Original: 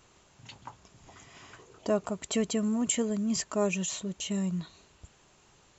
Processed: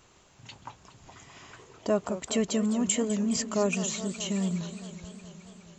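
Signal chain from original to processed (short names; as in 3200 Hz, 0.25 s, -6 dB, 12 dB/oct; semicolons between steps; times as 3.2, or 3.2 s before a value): warbling echo 0.209 s, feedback 74%, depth 190 cents, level -13 dB; gain +1.5 dB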